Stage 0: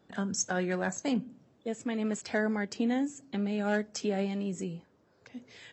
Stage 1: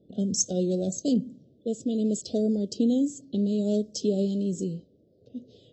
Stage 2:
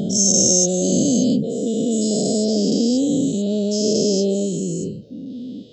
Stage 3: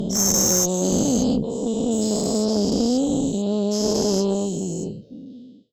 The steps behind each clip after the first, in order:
inverse Chebyshev band-stop 870–2300 Hz, stop band 40 dB; level-controlled noise filter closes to 1.8 kHz, open at -28.5 dBFS; trim +6 dB
every event in the spectrogram widened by 480 ms; trim +1.5 dB
fade out at the end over 0.73 s; Chebyshev shaper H 4 -14 dB, 5 -21 dB, 6 -9 dB, 8 -25 dB, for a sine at -1 dBFS; trim -6 dB

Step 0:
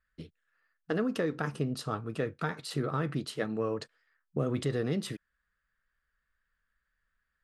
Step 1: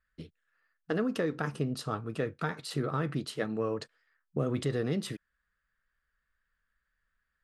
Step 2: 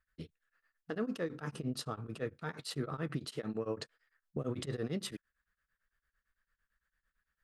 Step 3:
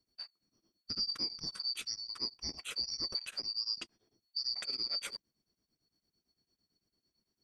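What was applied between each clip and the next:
no audible change
peak limiter -25 dBFS, peak gain reduction 8 dB; tremolo of two beating tones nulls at 8.9 Hz
four frequency bands reordered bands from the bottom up 2341

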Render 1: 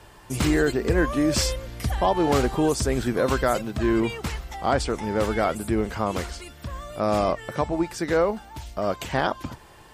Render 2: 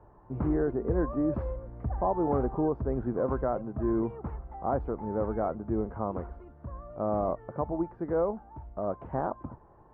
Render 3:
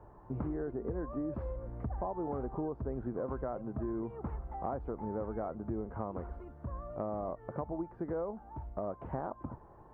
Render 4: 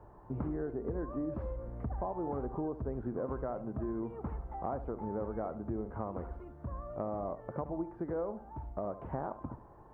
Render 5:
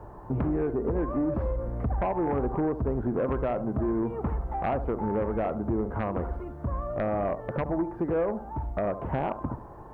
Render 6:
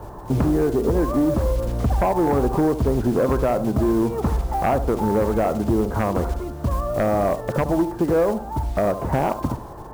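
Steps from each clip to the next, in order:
low-pass 1.1 kHz 24 dB/octave; trim -6 dB
compression, threshold -35 dBFS, peak gain reduction 12 dB; trim +1 dB
tape echo 72 ms, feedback 39%, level -11.5 dB, low-pass 1.4 kHz
sine folder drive 7 dB, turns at -21.5 dBFS
block-companded coder 5-bit; trim +8 dB

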